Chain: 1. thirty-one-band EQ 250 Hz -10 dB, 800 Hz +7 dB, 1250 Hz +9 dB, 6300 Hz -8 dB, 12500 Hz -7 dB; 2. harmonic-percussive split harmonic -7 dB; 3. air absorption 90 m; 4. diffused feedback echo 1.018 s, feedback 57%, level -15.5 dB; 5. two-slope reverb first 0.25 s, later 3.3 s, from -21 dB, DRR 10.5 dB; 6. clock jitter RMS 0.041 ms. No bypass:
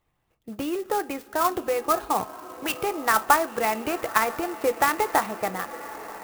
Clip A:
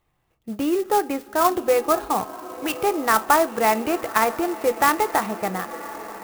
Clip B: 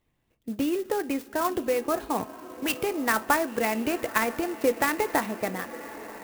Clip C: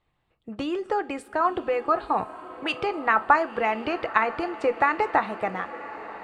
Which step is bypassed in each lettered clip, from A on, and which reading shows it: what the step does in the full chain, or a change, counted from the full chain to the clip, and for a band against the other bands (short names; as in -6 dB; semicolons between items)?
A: 2, 250 Hz band +3.5 dB; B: 1, 250 Hz band +5.0 dB; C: 6, 4 kHz band -3.0 dB